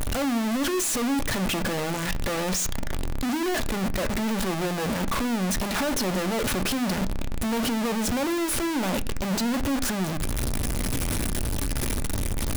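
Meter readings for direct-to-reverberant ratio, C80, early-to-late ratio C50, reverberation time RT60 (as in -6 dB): 10.5 dB, 25.5 dB, 21.0 dB, 0.50 s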